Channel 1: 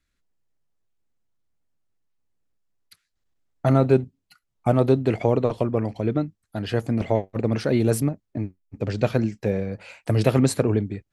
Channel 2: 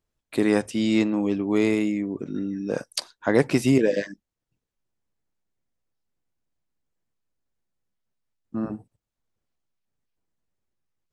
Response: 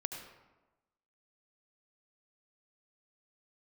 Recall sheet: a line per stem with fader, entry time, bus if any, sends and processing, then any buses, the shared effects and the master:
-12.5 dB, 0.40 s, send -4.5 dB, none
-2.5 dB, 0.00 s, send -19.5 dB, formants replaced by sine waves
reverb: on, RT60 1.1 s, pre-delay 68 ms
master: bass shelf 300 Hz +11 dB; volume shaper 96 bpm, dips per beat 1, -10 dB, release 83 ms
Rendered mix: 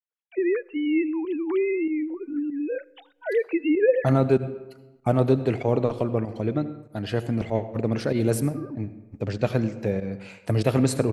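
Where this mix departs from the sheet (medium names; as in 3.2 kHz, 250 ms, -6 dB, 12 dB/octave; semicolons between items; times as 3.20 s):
stem 1 -12.5 dB -> -5.5 dB; master: missing bass shelf 300 Hz +11 dB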